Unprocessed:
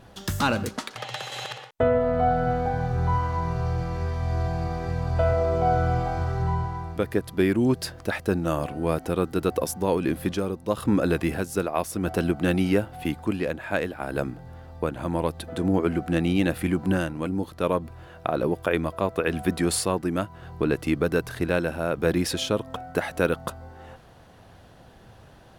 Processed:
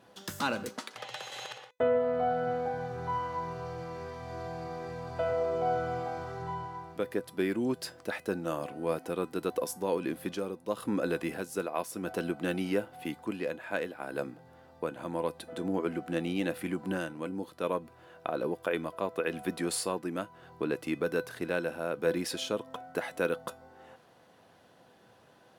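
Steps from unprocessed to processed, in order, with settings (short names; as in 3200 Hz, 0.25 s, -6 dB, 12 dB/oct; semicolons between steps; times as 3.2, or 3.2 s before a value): HPF 200 Hz 12 dB/oct; resonator 500 Hz, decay 0.22 s, harmonics all, mix 60%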